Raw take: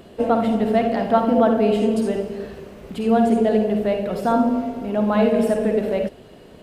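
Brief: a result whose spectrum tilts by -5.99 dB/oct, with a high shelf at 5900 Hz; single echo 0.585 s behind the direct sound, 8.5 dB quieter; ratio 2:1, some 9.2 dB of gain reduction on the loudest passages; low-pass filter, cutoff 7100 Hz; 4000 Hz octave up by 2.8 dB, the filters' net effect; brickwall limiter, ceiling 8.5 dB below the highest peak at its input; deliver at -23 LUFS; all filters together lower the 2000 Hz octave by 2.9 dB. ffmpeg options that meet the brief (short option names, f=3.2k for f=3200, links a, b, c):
-af "lowpass=7.1k,equalizer=f=2k:t=o:g=-5.5,equalizer=f=4k:t=o:g=8,highshelf=f=5.9k:g=-3.5,acompressor=threshold=-30dB:ratio=2,alimiter=limit=-22dB:level=0:latency=1,aecho=1:1:585:0.376,volume=7.5dB"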